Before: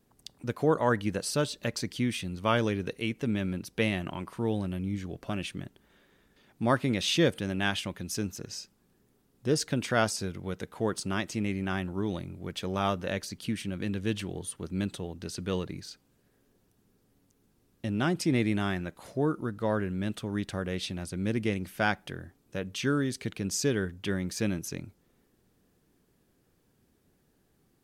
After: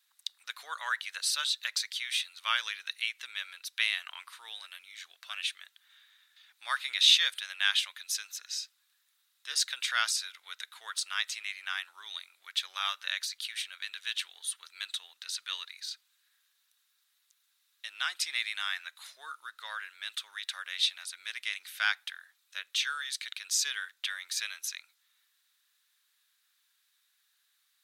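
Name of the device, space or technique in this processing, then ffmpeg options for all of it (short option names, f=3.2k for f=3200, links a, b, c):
headphones lying on a table: -af "highpass=f=1.4k:w=0.5412,highpass=f=1.4k:w=1.3066,equalizer=f=3.8k:t=o:w=0.29:g=10.5,volume=3dB"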